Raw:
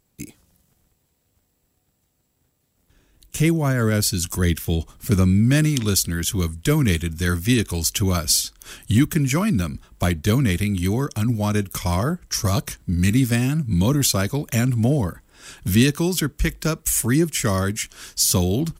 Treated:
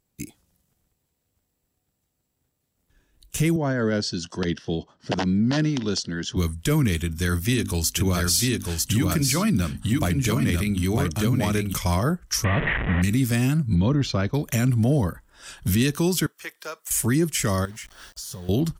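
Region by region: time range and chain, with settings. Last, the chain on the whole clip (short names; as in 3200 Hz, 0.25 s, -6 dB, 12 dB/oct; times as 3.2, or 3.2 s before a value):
3.56–6.37 wrapped overs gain 9 dB + speaker cabinet 190–5100 Hz, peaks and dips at 1200 Hz -7 dB, 2300 Hz -10 dB, 3700 Hz -5 dB
7.01–11.74 notches 50/100/150/200/250/300 Hz + echo 0.947 s -3.5 dB
12.44–13.02 delta modulation 16 kbps, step -20.5 dBFS + bell 1900 Hz +13 dB 0.25 oct
13.75–14.34 expander -30 dBFS + air absorption 230 m
16.26–16.91 Bessel high-pass 940 Hz + high shelf 7600 Hz +4 dB + de-esser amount 80%
17.65–18.49 high shelf 2400 Hz -8.5 dB + compressor 12:1, threshold -32 dBFS + requantised 8-bit, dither none
whole clip: spectral noise reduction 7 dB; limiter -13 dBFS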